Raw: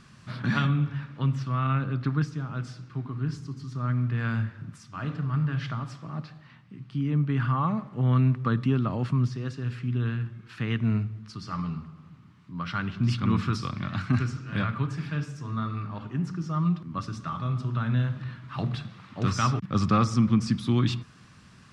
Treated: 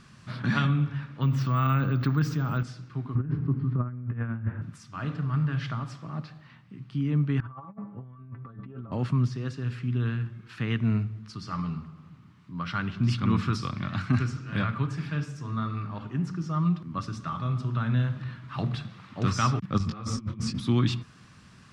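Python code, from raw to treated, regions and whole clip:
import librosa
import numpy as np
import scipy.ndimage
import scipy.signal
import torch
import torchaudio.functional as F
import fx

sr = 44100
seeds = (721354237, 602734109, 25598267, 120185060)

y = fx.chain(x, sr, fx.resample_bad(factor=2, down='none', up='hold'),
    fx.env_flatten(amount_pct=50), at=(1.22, 2.63))
y = fx.chain(y, sr, fx.lowpass(hz=2500.0, slope=24),
    fx.tilt_shelf(db=5.5, hz=1300.0),
    fx.over_compress(threshold_db=-27.0, ratio=-0.5), at=(3.15, 4.62))
y = fx.chain(y, sr, fx.lowpass(hz=1300.0, slope=12),
    fx.stiff_resonator(f0_hz=100.0, decay_s=0.22, stiffness=0.008),
    fx.over_compress(threshold_db=-40.0, ratio=-0.5), at=(7.4, 8.92))
y = fx.chain(y, sr, fx.low_shelf(hz=97.0, db=6.5),
    fx.over_compress(threshold_db=-26.0, ratio=-0.5),
    fx.detune_double(cents=34), at=(19.78, 20.6))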